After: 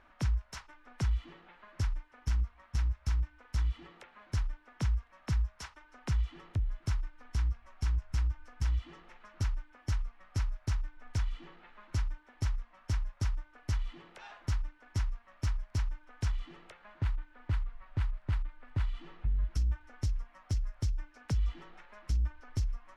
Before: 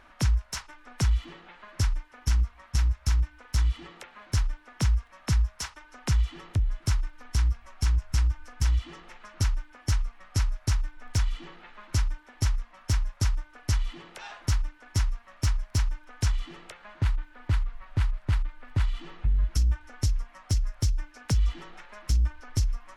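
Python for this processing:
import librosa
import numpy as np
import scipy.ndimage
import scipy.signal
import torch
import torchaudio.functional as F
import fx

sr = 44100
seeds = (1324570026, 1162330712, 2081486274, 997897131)

y = fx.high_shelf(x, sr, hz=5100.0, db=-11.0)
y = y * 10.0 ** (-6.5 / 20.0)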